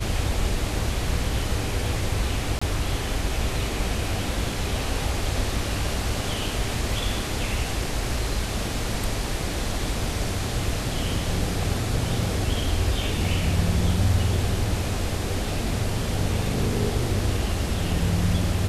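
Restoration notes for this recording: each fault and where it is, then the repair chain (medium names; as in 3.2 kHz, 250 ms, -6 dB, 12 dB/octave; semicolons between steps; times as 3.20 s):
2.59–2.62 s: dropout 25 ms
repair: interpolate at 2.59 s, 25 ms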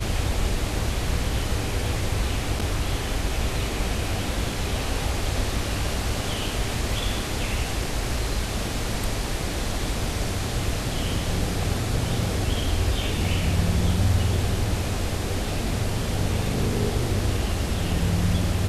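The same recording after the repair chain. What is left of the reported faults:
nothing left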